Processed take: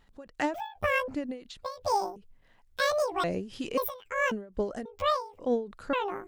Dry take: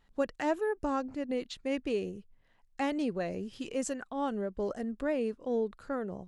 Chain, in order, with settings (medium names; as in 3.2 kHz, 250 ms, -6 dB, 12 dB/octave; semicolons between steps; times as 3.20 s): pitch shift switched off and on +12 st, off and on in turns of 539 ms; endings held to a fixed fall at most 140 dB/s; trim +6 dB